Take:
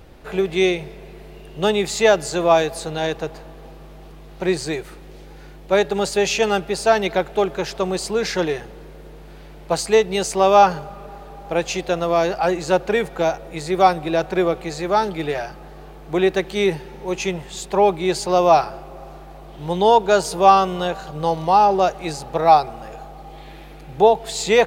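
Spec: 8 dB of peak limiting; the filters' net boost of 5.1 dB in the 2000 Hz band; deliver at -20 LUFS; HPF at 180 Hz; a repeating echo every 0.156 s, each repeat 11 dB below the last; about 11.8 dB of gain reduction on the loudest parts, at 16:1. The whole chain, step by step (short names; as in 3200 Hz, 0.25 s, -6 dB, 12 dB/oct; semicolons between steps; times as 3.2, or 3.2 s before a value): HPF 180 Hz; bell 2000 Hz +6.5 dB; compressor 16:1, threshold -18 dBFS; limiter -16 dBFS; feedback echo 0.156 s, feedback 28%, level -11 dB; gain +6.5 dB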